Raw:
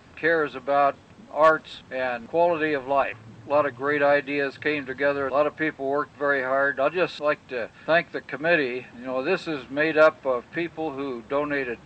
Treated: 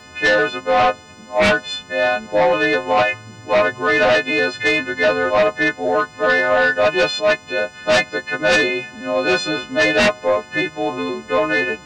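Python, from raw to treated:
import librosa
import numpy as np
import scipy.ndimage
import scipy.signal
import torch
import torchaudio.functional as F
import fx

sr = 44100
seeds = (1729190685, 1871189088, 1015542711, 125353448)

y = fx.freq_snap(x, sr, grid_st=3)
y = fx.dynamic_eq(y, sr, hz=640.0, q=2.4, threshold_db=-33.0, ratio=4.0, max_db=4)
y = fx.fold_sine(y, sr, drive_db=11, ceiling_db=-2.0)
y = y * librosa.db_to_amplitude(-8.0)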